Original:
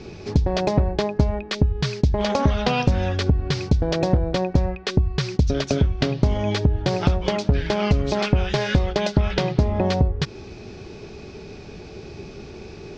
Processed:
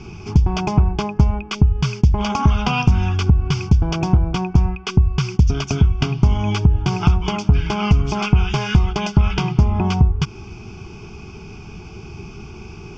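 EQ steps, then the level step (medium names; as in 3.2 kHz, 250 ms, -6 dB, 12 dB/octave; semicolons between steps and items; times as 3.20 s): peaking EQ 270 Hz -6 dB 0.32 oct; treble shelf 5.5 kHz -5 dB; static phaser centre 2.7 kHz, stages 8; +6.0 dB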